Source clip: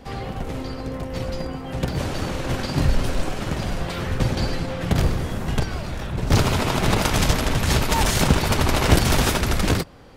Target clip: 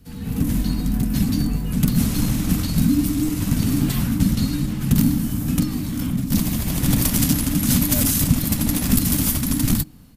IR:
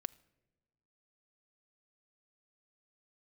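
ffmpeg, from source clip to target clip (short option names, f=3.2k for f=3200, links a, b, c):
-af "afreqshift=-310,dynaudnorm=f=190:g=3:m=14dB,firequalizer=gain_entry='entry(130,0);entry(470,-14);entry(13000,13)':delay=0.05:min_phase=1,volume=-2dB"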